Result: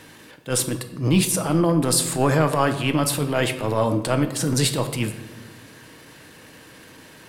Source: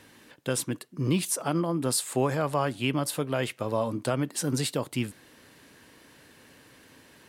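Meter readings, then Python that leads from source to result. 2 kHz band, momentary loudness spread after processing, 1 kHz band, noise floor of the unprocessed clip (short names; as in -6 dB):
+7.5 dB, 8 LU, +7.0 dB, -56 dBFS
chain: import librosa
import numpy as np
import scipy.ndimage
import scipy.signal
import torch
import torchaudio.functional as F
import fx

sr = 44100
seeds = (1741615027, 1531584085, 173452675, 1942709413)

y = fx.transient(x, sr, attack_db=-12, sustain_db=1)
y = fx.room_shoebox(y, sr, seeds[0], volume_m3=520.0, walls='mixed', distance_m=0.58)
y = F.gain(torch.from_numpy(y), 8.5).numpy()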